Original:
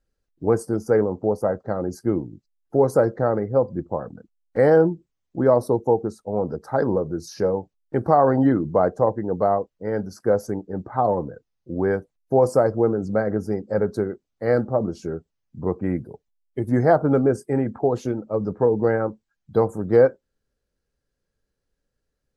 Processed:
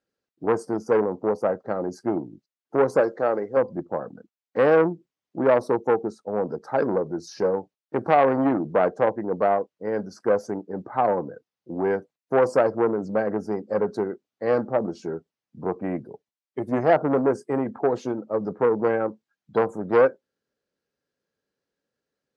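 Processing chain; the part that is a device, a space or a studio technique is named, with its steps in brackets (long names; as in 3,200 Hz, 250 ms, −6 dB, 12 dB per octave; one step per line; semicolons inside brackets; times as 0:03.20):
0:03.00–0:03.57: bass and treble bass −10 dB, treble +6 dB
public-address speaker with an overloaded transformer (saturating transformer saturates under 830 Hz; band-pass filter 200–6,000 Hz)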